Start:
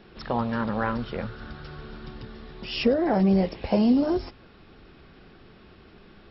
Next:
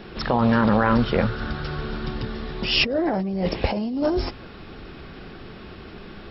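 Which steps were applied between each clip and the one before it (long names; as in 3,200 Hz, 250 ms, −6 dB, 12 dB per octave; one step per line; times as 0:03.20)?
compressor whose output falls as the input rises −28 dBFS, ratio −1
level +7 dB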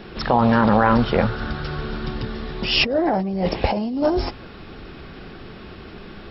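dynamic equaliser 800 Hz, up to +5 dB, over −37 dBFS, Q 2
level +1.5 dB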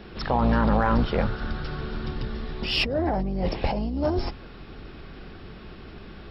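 sub-octave generator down 2 octaves, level +1 dB
in parallel at −7.5 dB: soft clipping −14.5 dBFS, distortion −11 dB
on the sum: level −8.5 dB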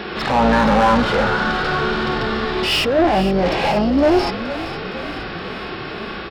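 mid-hump overdrive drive 26 dB, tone 3,500 Hz, clips at −9.5 dBFS
echo with shifted repeats 466 ms, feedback 65%, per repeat −35 Hz, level −13 dB
harmonic and percussive parts rebalanced percussive −13 dB
level +5 dB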